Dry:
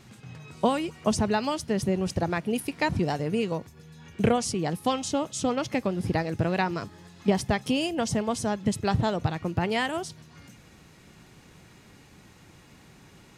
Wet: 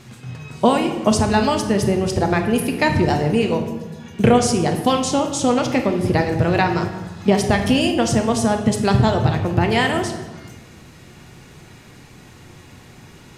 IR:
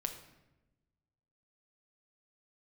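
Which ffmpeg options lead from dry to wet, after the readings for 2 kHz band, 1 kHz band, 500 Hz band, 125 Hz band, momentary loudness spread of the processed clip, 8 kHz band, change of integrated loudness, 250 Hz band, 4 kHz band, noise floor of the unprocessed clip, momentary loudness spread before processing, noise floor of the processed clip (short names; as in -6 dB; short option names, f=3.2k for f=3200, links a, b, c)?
+9.0 dB, +9.0 dB, +9.0 dB, +10.0 dB, 7 LU, +8.5 dB, +9.0 dB, +9.0 dB, +8.5 dB, -54 dBFS, 5 LU, -44 dBFS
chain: -filter_complex "[1:a]atrim=start_sample=2205,asetrate=32193,aresample=44100[a];[0:a][a]afir=irnorm=-1:irlink=0,volume=7dB"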